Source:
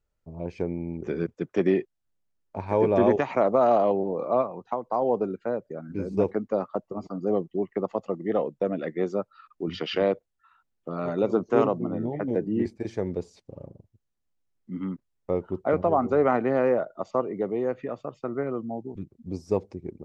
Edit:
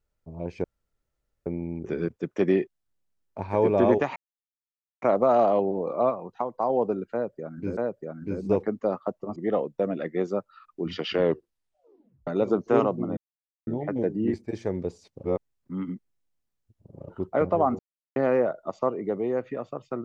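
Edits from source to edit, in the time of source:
0.64 s: insert room tone 0.82 s
3.34 s: insert silence 0.86 s
5.45–6.09 s: loop, 2 plays
7.04–8.18 s: delete
9.94 s: tape stop 1.15 s
11.99 s: insert silence 0.50 s
13.56–15.42 s: reverse
16.11–16.48 s: mute

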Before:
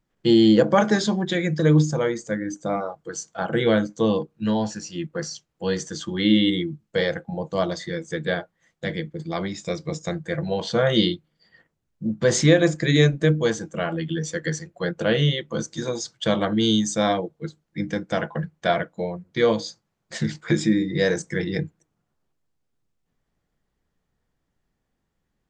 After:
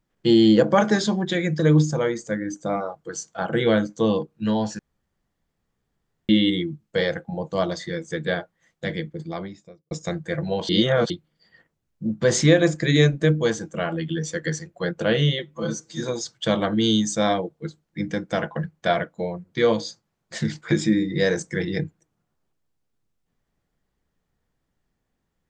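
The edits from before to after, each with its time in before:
4.79–6.29 s: room tone
9.03–9.91 s: studio fade out
10.69–11.10 s: reverse
15.39–15.80 s: stretch 1.5×

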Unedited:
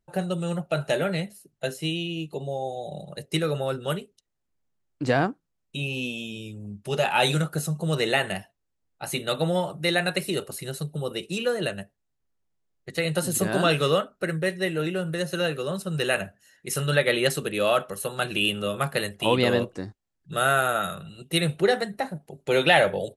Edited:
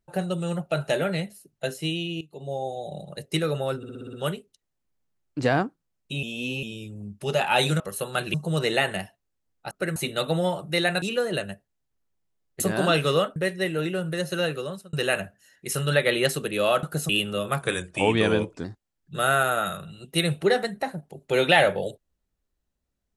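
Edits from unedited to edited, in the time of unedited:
2.21–2.52 s: fade in quadratic, from -15.5 dB
3.77 s: stutter 0.06 s, 7 plays
5.87–6.27 s: reverse
7.44–7.70 s: swap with 17.84–18.38 s
10.13–11.31 s: delete
12.89–13.36 s: delete
14.12–14.37 s: move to 9.07 s
15.56–15.94 s: fade out
18.90–19.82 s: speed 89%

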